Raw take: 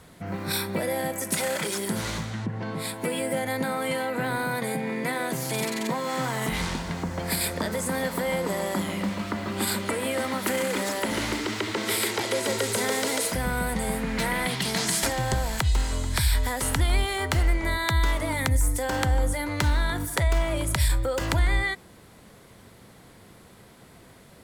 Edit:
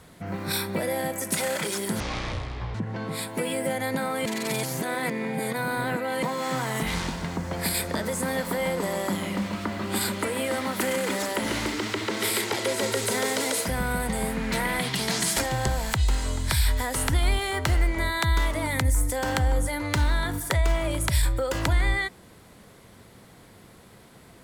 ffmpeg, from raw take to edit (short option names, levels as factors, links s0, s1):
-filter_complex "[0:a]asplit=5[s0][s1][s2][s3][s4];[s0]atrim=end=2.004[s5];[s1]atrim=start=2:end=2.41,asetpts=PTS-STARTPTS,asetrate=24255,aresample=44100[s6];[s2]atrim=start=2.406:end=3.922[s7];[s3]atrim=start=3.918:end=5.892,asetpts=PTS-STARTPTS,areverse[s8];[s4]atrim=start=5.888[s9];[s5][s6]acrossfade=d=0.004:c1=hsin:c2=hsin[s10];[s10][s7]acrossfade=d=0.004:c1=hsin:c2=hsin[s11];[s11][s8]acrossfade=d=0.004:c1=hsin:c2=hsin[s12];[s12][s9]acrossfade=d=0.004:c1=hsin:c2=hsin"